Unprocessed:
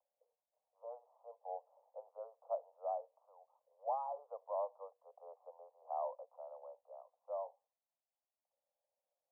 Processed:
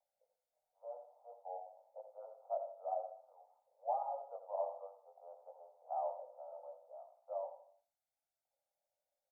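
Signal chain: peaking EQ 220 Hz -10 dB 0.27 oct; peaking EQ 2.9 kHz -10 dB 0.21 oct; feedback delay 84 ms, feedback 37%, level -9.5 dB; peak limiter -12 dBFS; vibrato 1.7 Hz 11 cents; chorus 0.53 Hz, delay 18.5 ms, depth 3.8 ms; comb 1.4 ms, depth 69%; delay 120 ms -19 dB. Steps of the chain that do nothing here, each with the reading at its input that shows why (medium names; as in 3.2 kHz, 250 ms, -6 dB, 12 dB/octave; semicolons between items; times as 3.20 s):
peaking EQ 220 Hz: input has nothing below 400 Hz; peaking EQ 2.9 kHz: input has nothing above 1.3 kHz; peak limiter -12 dBFS: peak at its input -26.5 dBFS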